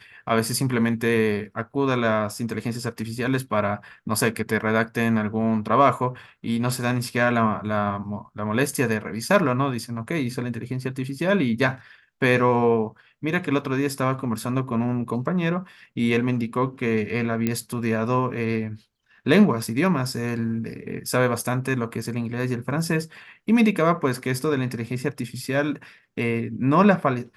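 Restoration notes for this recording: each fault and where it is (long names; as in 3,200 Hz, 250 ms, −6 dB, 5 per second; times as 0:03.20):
0:17.47: click −10 dBFS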